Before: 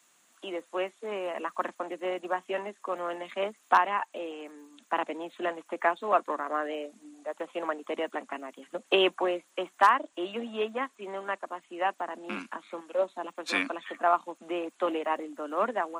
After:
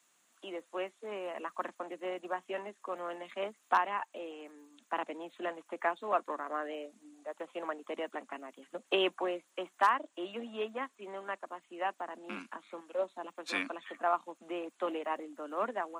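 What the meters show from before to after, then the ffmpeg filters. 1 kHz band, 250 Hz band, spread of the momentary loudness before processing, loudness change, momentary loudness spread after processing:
-6.0 dB, -6.0 dB, 14 LU, -6.0 dB, 14 LU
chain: -af "highpass=100,volume=-6dB"

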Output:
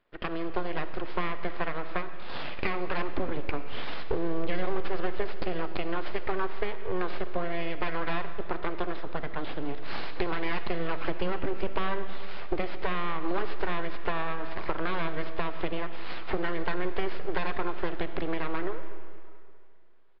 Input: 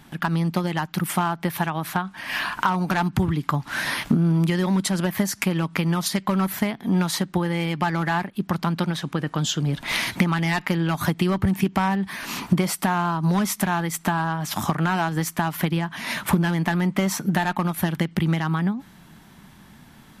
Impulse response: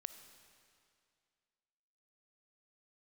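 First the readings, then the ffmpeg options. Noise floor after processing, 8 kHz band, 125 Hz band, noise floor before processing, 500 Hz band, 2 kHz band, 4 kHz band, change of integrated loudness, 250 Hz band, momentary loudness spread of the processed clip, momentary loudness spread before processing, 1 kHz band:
-36 dBFS, under -40 dB, -17.5 dB, -50 dBFS, -2.5 dB, -8.0 dB, -11.0 dB, -10.5 dB, -13.5 dB, 5 LU, 4 LU, -8.5 dB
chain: -filter_complex "[0:a]aeval=exprs='abs(val(0))':c=same,aresample=11025,aresample=44100,agate=range=-15dB:threshold=-36dB:ratio=16:detection=peak,bass=f=250:g=-6,treble=f=4k:g=-15[a];[1:a]atrim=start_sample=2205[b];[a][b]afir=irnorm=-1:irlink=0"

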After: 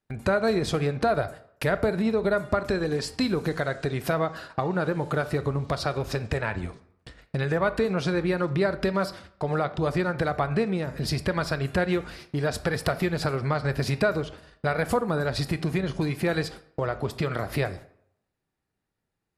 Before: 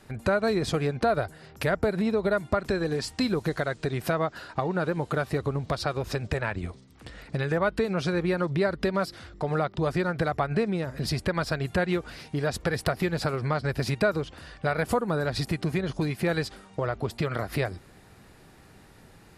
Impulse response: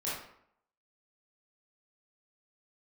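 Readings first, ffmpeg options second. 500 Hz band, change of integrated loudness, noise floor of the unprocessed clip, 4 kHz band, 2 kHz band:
+1.0 dB, +1.0 dB, -53 dBFS, +1.0 dB, +1.0 dB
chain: -filter_complex "[0:a]agate=range=-31dB:threshold=-42dB:ratio=16:detection=peak,asplit=2[a][b];[1:a]atrim=start_sample=2205[c];[b][c]afir=irnorm=-1:irlink=0,volume=-16dB[d];[a][d]amix=inputs=2:normalize=0"

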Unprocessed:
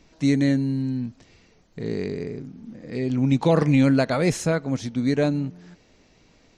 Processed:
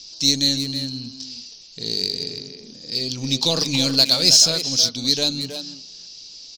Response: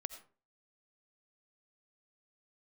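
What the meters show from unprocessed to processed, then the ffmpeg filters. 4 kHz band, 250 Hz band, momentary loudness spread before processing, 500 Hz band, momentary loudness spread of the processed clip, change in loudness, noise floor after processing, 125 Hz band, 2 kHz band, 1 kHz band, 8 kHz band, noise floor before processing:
+23.0 dB, -6.5 dB, 16 LU, -5.5 dB, 24 LU, +4.5 dB, -42 dBFS, -7.0 dB, -1.5 dB, -5.0 dB, +18.5 dB, -58 dBFS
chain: -filter_complex "[0:a]lowpass=f=5k:t=q:w=4.8,bandreject=f=50:t=h:w=6,bandreject=f=100:t=h:w=6,bandreject=f=150:t=h:w=6,bandreject=f=200:t=h:w=6,bandreject=f=250:t=h:w=6,asplit=2[a][b];[b]aeval=exprs='clip(val(0),-1,0.0335)':c=same,volume=-7dB[c];[a][c]amix=inputs=2:normalize=0,asplit=2[d][e];[e]adelay=320,highpass=300,lowpass=3.4k,asoftclip=type=hard:threshold=-14.5dB,volume=-6dB[f];[d][f]amix=inputs=2:normalize=0,aexciter=amount=8.3:drive=8:freq=3k,volume=-8.5dB"

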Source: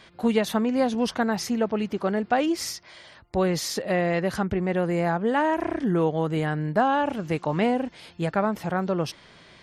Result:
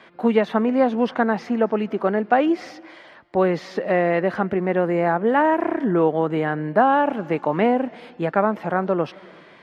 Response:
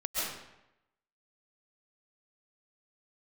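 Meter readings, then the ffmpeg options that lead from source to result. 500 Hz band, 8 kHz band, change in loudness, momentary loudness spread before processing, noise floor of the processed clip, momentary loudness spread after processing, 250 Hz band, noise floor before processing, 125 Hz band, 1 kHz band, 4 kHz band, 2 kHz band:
+5.5 dB, under -15 dB, +4.0 dB, 5 LU, -48 dBFS, 6 LU, +3.0 dB, -52 dBFS, -0.5 dB, +5.5 dB, -5.5 dB, +4.0 dB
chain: -filter_complex "[0:a]acrossover=split=5000[a][b];[b]acompressor=threshold=-52dB:ratio=4:attack=1:release=60[c];[a][c]amix=inputs=2:normalize=0,acrossover=split=180 2600:gain=0.0891 1 0.158[d][e][f];[d][e][f]amix=inputs=3:normalize=0,asplit=2[g][h];[1:a]atrim=start_sample=2205,adelay=132[i];[h][i]afir=irnorm=-1:irlink=0,volume=-30dB[j];[g][j]amix=inputs=2:normalize=0,volume=5.5dB"

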